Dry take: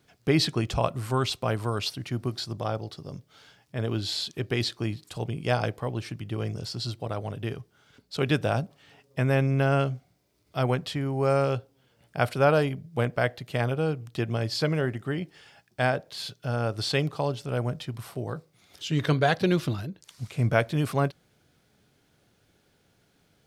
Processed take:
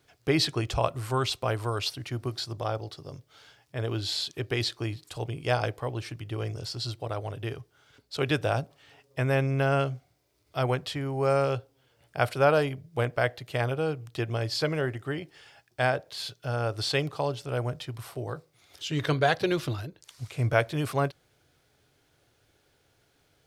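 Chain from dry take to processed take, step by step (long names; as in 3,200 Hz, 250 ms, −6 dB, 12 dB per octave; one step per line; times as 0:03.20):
parametric band 200 Hz −14.5 dB 0.49 octaves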